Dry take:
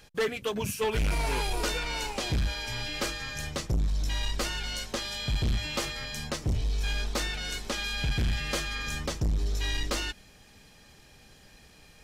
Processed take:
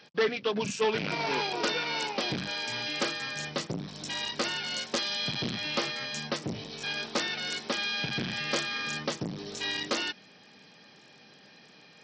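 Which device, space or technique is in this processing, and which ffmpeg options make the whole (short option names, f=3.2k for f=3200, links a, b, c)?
Bluetooth headset: -filter_complex "[0:a]asettb=1/sr,asplit=3[a][b][c];[a]atrim=end=4.924[d];[b]atrim=start=4.92:end=5.52,asetpts=PTS-STARTPTS,afade=t=in:d=0.004:c=qsin,afade=t=out:st=0.596:d=0.004:c=qsin,highshelf=f=3.8k:g=4.5[e];[c]atrim=start=5.516[f];[d][e]acrossfade=d=0.004:c1=hsin:c2=qsin[g];[g][f]acrossfade=d=0.004:c1=qsin:c2=hsin,highpass=f=160:w=0.5412,highpass=f=160:w=1.3066,aresample=16000,aresample=44100,volume=2dB" -ar 44100 -c:a sbc -b:a 64k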